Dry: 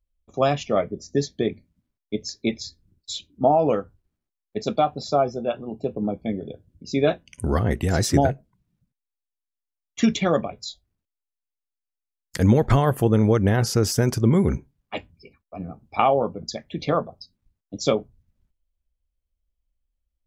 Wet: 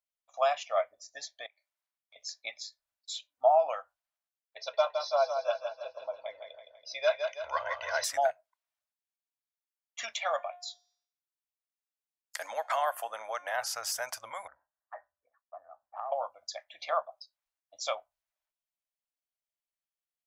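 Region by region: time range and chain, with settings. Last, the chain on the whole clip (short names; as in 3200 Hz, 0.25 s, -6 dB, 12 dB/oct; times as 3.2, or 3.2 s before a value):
1.46–2.16 HPF 640 Hz + compressor 2.5:1, threshold -53 dBFS
4.57–8.04 brick-wall FIR low-pass 6400 Hz + comb 2 ms, depth 77% + feedback echo 0.164 s, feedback 49%, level -6.5 dB
10.22–13.55 steep high-pass 210 Hz + de-hum 356.3 Hz, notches 29
14.47–16.12 Chebyshev low-pass 1900 Hz, order 8 + compressor 3:1, threshold -34 dBFS
whole clip: elliptic high-pass 630 Hz, stop band 40 dB; dynamic EQ 4500 Hz, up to -3 dB, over -46 dBFS, Q 0.73; gain -3.5 dB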